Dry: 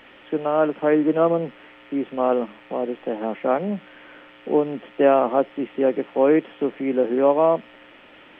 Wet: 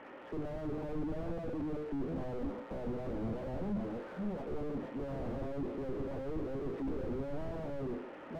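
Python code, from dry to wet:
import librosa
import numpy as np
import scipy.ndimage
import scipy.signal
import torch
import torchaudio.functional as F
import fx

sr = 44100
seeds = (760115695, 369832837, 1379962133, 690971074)

p1 = fx.reverse_delay(x, sr, ms=442, wet_db=-7.0)
p2 = scipy.signal.sosfilt(scipy.signal.butter(2, 120.0, 'highpass', fs=sr, output='sos'), p1)
p3 = fx.low_shelf(p2, sr, hz=180.0, db=-5.5)
p4 = fx.hum_notches(p3, sr, base_hz=50, count=10)
p5 = p4 + fx.echo_single(p4, sr, ms=170, db=-23.5, dry=0)
p6 = fx.tube_stage(p5, sr, drive_db=29.0, bias=0.45)
p7 = scipy.signal.sosfilt(scipy.signal.butter(2, 1100.0, 'lowpass', fs=sr, output='sos'), p6)
p8 = fx.notch(p7, sr, hz=690.0, q=23.0)
p9 = fx.slew_limit(p8, sr, full_power_hz=3.0)
y = F.gain(torch.from_numpy(p9), 4.5).numpy()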